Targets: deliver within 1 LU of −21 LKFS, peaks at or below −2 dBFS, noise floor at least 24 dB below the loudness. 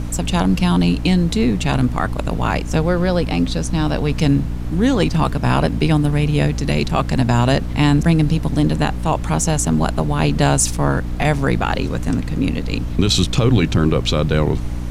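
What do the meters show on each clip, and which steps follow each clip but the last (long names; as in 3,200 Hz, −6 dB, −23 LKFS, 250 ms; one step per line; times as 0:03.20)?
mains hum 60 Hz; hum harmonics up to 300 Hz; level of the hum −22 dBFS; background noise floor −24 dBFS; target noise floor −42 dBFS; integrated loudness −18.0 LKFS; sample peak −3.0 dBFS; target loudness −21.0 LKFS
→ hum removal 60 Hz, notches 5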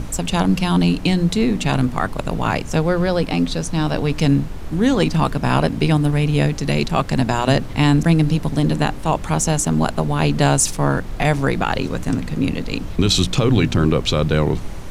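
mains hum none found; background noise floor −29 dBFS; target noise floor −43 dBFS
→ noise reduction from a noise print 14 dB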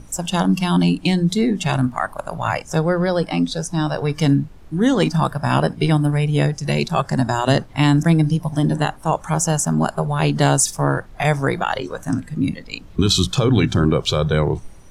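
background noise floor −41 dBFS; target noise floor −44 dBFS
→ noise reduction from a noise print 6 dB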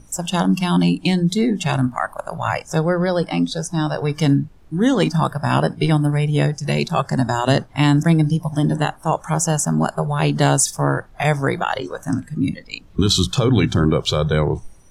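background noise floor −46 dBFS; integrated loudness −19.5 LKFS; sample peak −3.5 dBFS; target loudness −21.0 LKFS
→ level −1.5 dB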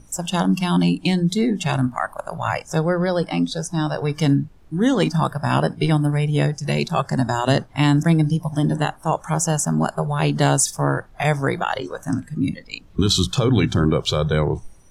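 integrated loudness −21.0 LKFS; sample peak −5.0 dBFS; background noise floor −47 dBFS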